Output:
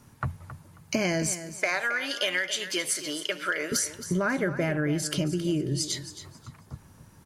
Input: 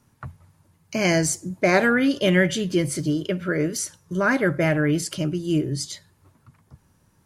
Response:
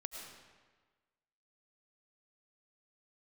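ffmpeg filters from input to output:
-filter_complex "[0:a]asettb=1/sr,asplit=3[s0][s1][s2];[s0]atrim=end=1.334[s3];[s1]atrim=start=1.33:end=3.72,asetpts=PTS-STARTPTS,afade=t=in:d=0.004:c=qsin,afade=t=out:st=2.386:d=0.004:c=qsin,highpass=940[s4];[s2]atrim=start=3.716[s5];[s3][s4]acrossfade=d=0.004:c1=hsin:c2=qsin[s6];[s6][s5]acrossfade=d=0.004:c1=qsin:c2=hsin,acompressor=threshold=0.0282:ratio=10,aecho=1:1:270|540|810:0.237|0.0545|0.0125,volume=2.24"

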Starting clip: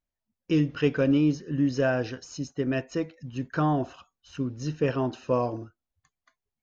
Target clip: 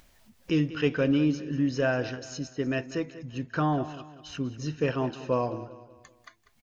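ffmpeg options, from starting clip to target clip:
-af "equalizer=f=2700:w=0.57:g=3.5,acompressor=mode=upward:threshold=0.02:ratio=2.5,aecho=1:1:193|386|579|772:0.178|0.0747|0.0314|0.0132,volume=0.794"

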